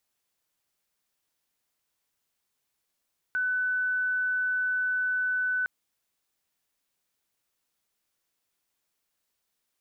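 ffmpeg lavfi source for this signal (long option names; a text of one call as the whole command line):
ffmpeg -f lavfi -i "aevalsrc='0.0596*sin(2*PI*1500*t)':duration=2.31:sample_rate=44100" out.wav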